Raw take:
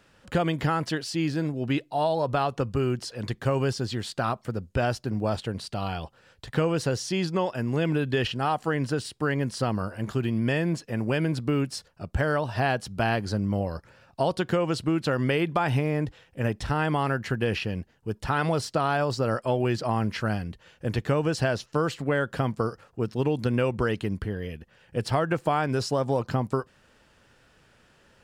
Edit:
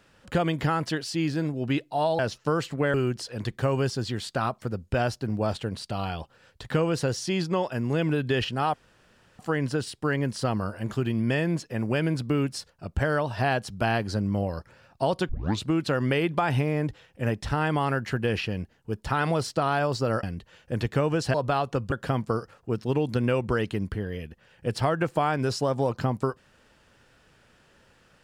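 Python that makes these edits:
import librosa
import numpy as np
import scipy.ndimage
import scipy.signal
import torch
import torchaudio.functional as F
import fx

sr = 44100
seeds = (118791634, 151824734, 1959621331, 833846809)

y = fx.edit(x, sr, fx.swap(start_s=2.19, length_s=0.58, other_s=21.47, other_length_s=0.75),
    fx.insert_room_tone(at_s=8.57, length_s=0.65),
    fx.tape_start(start_s=14.47, length_s=0.35),
    fx.cut(start_s=19.41, length_s=0.95), tone=tone)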